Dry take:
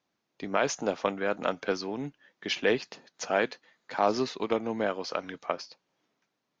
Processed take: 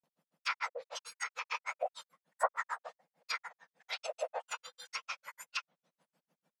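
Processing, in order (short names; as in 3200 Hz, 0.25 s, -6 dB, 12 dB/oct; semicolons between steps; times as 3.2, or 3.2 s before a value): spectrum mirrored in octaves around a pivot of 1800 Hz; grains 0.1 s, grains 6.7/s, spray 0.1 s, pitch spread up and down by 0 st; treble ducked by the level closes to 1800 Hz, closed at -36 dBFS; gain +5 dB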